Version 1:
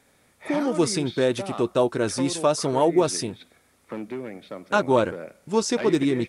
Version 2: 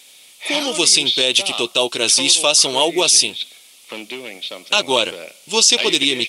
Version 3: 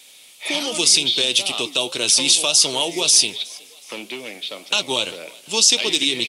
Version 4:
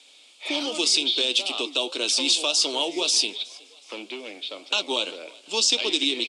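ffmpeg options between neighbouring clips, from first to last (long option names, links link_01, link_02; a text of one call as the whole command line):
ffmpeg -i in.wav -af "highpass=frequency=1000:poles=1,highshelf=frequency=2200:width_type=q:width=3:gain=10,alimiter=level_in=10dB:limit=-1dB:release=50:level=0:latency=1,volume=-1dB" out.wav
ffmpeg -i in.wav -filter_complex "[0:a]acrossover=split=220|3000[link_01][link_02][link_03];[link_02]acompressor=threshold=-25dB:ratio=2.5[link_04];[link_01][link_04][link_03]amix=inputs=3:normalize=0,asplit=4[link_05][link_06][link_07][link_08];[link_06]adelay=368,afreqshift=56,volume=-24dB[link_09];[link_07]adelay=736,afreqshift=112,volume=-30.9dB[link_10];[link_08]adelay=1104,afreqshift=168,volume=-37.9dB[link_11];[link_05][link_09][link_10][link_11]amix=inputs=4:normalize=0,flanger=delay=6.4:depth=4.8:regen=-83:speed=1.9:shape=sinusoidal,volume=3.5dB" out.wav
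ffmpeg -i in.wav -af "highpass=frequency=250:width=0.5412,highpass=frequency=250:width=1.3066,equalizer=frequency=290:width_type=q:width=4:gain=4,equalizer=frequency=1900:width_type=q:width=4:gain=-7,equalizer=frequency=6100:width_type=q:width=4:gain=-6,lowpass=frequency=7400:width=0.5412,lowpass=frequency=7400:width=1.3066,volume=-3.5dB" out.wav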